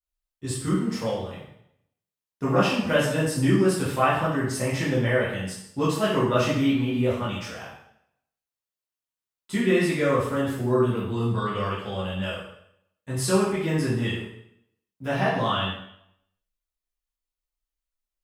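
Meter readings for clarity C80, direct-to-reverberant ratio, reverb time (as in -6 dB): 5.5 dB, -9.5 dB, 0.70 s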